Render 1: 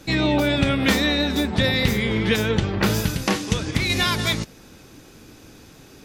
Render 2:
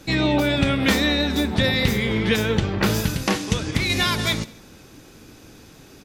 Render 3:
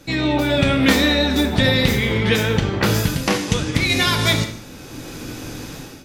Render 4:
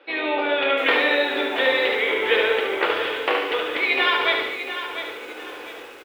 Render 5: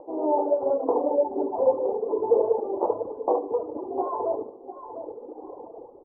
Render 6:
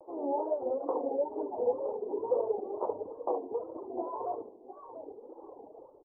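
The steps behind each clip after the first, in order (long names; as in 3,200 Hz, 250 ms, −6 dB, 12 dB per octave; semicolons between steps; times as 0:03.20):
repeating echo 68 ms, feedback 55%, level −19.5 dB
automatic gain control gain up to 14.5 dB; reverb whose tail is shaped and stops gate 220 ms falling, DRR 6 dB; level −1.5 dB
elliptic band-pass filter 400–3,100 Hz, stop band 40 dB; repeating echo 72 ms, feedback 46%, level −5 dB; feedback echo at a low word length 698 ms, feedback 35%, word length 7 bits, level −9.5 dB
reverb reduction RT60 1.9 s; upward compression, threshold −41 dBFS; Butterworth low-pass 960 Hz 72 dB per octave; level +3 dB
tape wow and flutter 130 cents; level −8.5 dB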